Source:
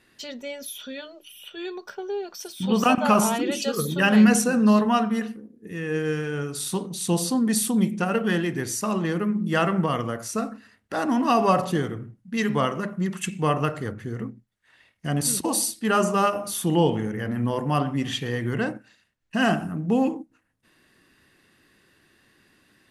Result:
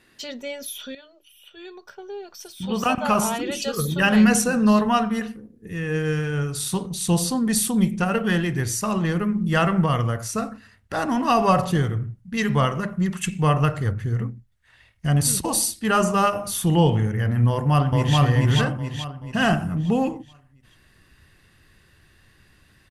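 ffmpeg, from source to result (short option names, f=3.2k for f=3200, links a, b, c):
-filter_complex "[0:a]asplit=2[a][b];[b]afade=t=in:st=17.49:d=0.01,afade=t=out:st=18.18:d=0.01,aecho=0:1:430|860|1290|1720|2150|2580:0.944061|0.424827|0.191172|0.0860275|0.0387124|0.0174206[c];[a][c]amix=inputs=2:normalize=0,asplit=2[d][e];[d]atrim=end=0.95,asetpts=PTS-STARTPTS,afade=t=out:st=0.946:d=0.004:c=hsin:silence=0.237137[f];[e]atrim=start=0.95,asetpts=PTS-STARTPTS,afade=t=in:d=3.53:silence=0.237137[g];[f][g]concat=n=2:v=0:a=1,asubboost=boost=8:cutoff=92,volume=2.5dB"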